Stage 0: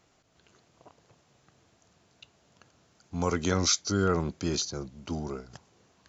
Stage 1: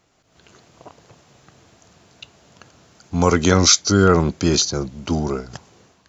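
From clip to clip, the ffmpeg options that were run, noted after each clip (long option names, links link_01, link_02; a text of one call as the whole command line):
ffmpeg -i in.wav -af "dynaudnorm=framelen=130:gausssize=5:maxgain=9.5dB,volume=3dB" out.wav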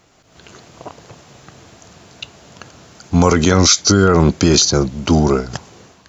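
ffmpeg -i in.wav -af "alimiter=level_in=10dB:limit=-1dB:release=50:level=0:latency=1,volume=-1dB" out.wav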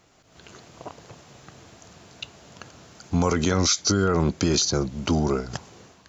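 ffmpeg -i in.wav -af "acompressor=threshold=-19dB:ratio=1.5,volume=-5.5dB" out.wav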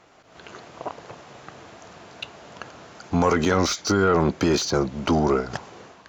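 ffmpeg -i in.wav -filter_complex "[0:a]asplit=2[link_01][link_02];[link_02]highpass=frequency=720:poles=1,volume=14dB,asoftclip=type=tanh:threshold=-9.5dB[link_03];[link_01][link_03]amix=inputs=2:normalize=0,lowpass=frequency=1300:poles=1,volume=-6dB,volume=2dB" out.wav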